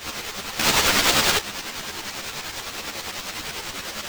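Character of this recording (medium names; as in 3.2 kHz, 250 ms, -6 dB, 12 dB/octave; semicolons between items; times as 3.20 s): a quantiser's noise floor 6-bit, dither triangular; tremolo saw up 10 Hz, depth 70%; aliases and images of a low sample rate 11 kHz, jitter 20%; a shimmering, thickened sound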